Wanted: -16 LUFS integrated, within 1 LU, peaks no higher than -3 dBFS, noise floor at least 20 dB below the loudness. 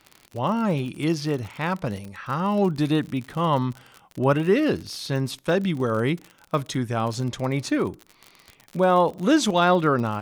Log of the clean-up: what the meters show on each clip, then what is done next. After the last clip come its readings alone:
ticks 49/s; loudness -24.0 LUFS; peak -7.5 dBFS; loudness target -16.0 LUFS
-> de-click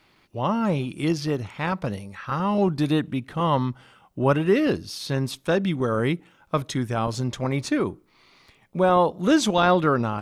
ticks 0.29/s; loudness -24.0 LUFS; peak -7.5 dBFS; loudness target -16.0 LUFS
-> gain +8 dB; limiter -3 dBFS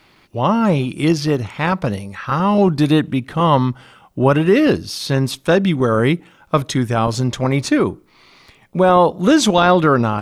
loudness -16.5 LUFS; peak -3.0 dBFS; noise floor -53 dBFS

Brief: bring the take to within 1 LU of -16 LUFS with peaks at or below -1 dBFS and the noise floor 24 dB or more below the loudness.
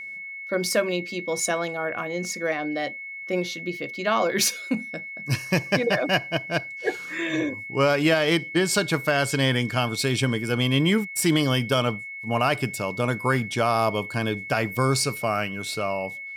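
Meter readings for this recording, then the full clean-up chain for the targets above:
steady tone 2200 Hz; tone level -34 dBFS; loudness -24.5 LUFS; peak -10.0 dBFS; loudness target -16.0 LUFS
-> notch 2200 Hz, Q 30; gain +8.5 dB

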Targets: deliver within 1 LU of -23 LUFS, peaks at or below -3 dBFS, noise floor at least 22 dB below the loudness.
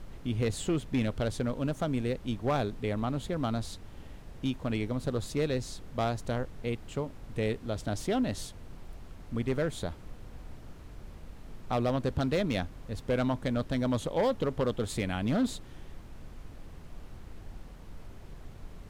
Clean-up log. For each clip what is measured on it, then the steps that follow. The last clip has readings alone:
clipped 1.1%; flat tops at -22.0 dBFS; noise floor -48 dBFS; noise floor target -54 dBFS; loudness -32.0 LUFS; peak -22.0 dBFS; loudness target -23.0 LUFS
-> clip repair -22 dBFS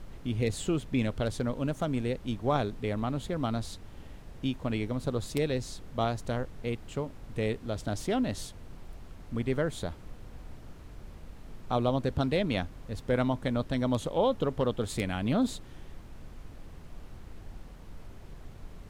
clipped 0.0%; noise floor -48 dBFS; noise floor target -54 dBFS
-> noise print and reduce 6 dB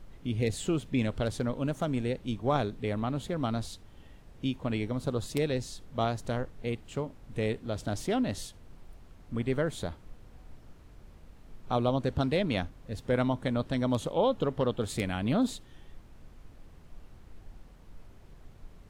noise floor -53 dBFS; noise floor target -54 dBFS
-> noise print and reduce 6 dB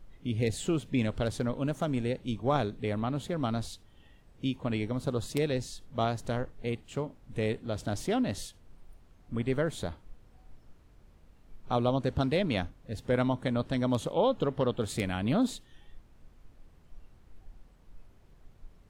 noise floor -59 dBFS; loudness -31.5 LUFS; peak -13.0 dBFS; loudness target -23.0 LUFS
-> gain +8.5 dB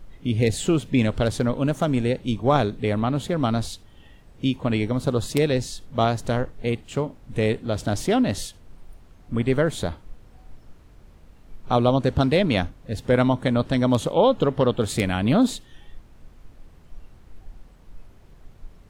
loudness -23.0 LUFS; peak -4.5 dBFS; noise floor -51 dBFS

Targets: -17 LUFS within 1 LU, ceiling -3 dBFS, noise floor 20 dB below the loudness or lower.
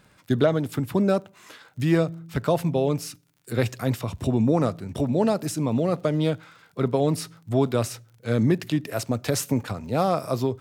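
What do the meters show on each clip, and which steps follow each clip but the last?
ticks 45/s; loudness -25.0 LUFS; peak -8.0 dBFS; loudness target -17.0 LUFS
-> de-click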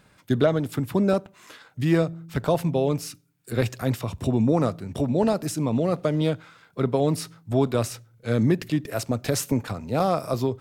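ticks 0.66/s; loudness -25.0 LUFS; peak -8.0 dBFS; loudness target -17.0 LUFS
-> gain +8 dB; limiter -3 dBFS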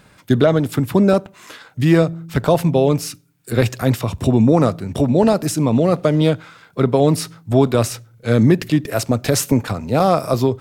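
loudness -17.0 LUFS; peak -3.0 dBFS; noise floor -51 dBFS

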